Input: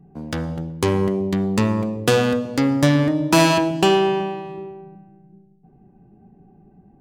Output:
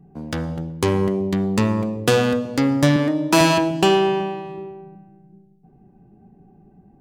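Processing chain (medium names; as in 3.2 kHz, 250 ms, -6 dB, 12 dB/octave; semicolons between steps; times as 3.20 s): 2.96–3.41 s: high-pass 180 Hz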